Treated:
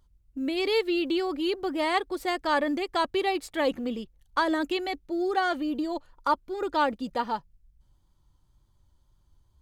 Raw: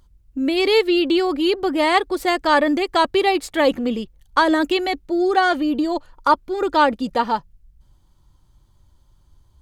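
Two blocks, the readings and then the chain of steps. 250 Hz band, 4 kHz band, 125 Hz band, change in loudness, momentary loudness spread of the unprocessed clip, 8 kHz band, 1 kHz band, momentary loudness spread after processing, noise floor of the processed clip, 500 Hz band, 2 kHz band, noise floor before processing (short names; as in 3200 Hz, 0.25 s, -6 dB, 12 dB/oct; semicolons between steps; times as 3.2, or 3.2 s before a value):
-9.0 dB, -9.0 dB, n/a, -9.0 dB, 7 LU, -9.0 dB, -9.0 dB, 7 LU, -66 dBFS, -9.0 dB, -9.0 dB, -57 dBFS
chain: wow and flutter 21 cents; short-mantissa float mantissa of 6-bit; gain -9 dB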